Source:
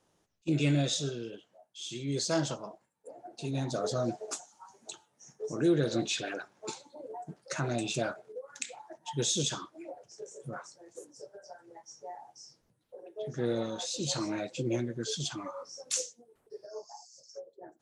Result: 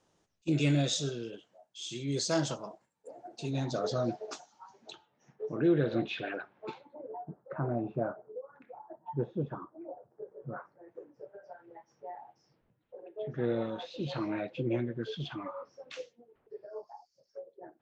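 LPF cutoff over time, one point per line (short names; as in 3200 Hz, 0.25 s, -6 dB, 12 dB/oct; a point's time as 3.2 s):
LPF 24 dB/oct
3.25 s 8300 Hz
4.04 s 5100 Hz
4.76 s 5100 Hz
5.43 s 3000 Hz
6.75 s 3000 Hz
7.3 s 1200 Hz
10.13 s 1200 Hz
11.5 s 3000 Hz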